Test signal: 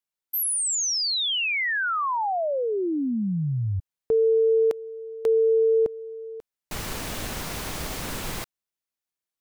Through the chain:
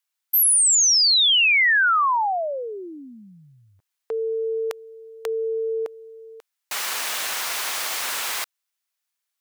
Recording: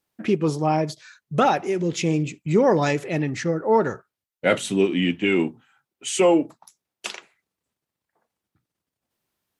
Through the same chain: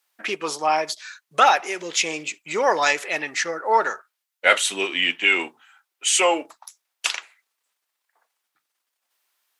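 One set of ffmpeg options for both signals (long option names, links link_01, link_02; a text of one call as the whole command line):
ffmpeg -i in.wav -af "highpass=1000,volume=8.5dB" out.wav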